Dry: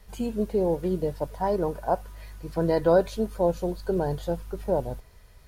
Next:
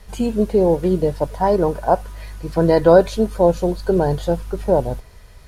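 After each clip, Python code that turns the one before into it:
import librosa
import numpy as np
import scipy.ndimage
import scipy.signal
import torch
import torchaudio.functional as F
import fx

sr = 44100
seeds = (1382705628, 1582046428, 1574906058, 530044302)

y = scipy.signal.sosfilt(scipy.signal.butter(2, 12000.0, 'lowpass', fs=sr, output='sos'), x)
y = F.gain(torch.from_numpy(y), 9.0).numpy()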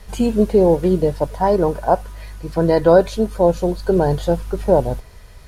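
y = fx.rider(x, sr, range_db=10, speed_s=2.0)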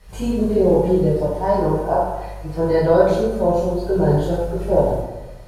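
y = fx.rev_plate(x, sr, seeds[0], rt60_s=1.1, hf_ratio=0.55, predelay_ms=0, drr_db=-8.5)
y = F.gain(torch.from_numpy(y), -11.0).numpy()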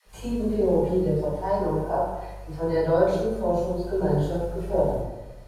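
y = fx.dispersion(x, sr, late='lows', ms=60.0, hz=400.0)
y = F.gain(torch.from_numpy(y), -6.5).numpy()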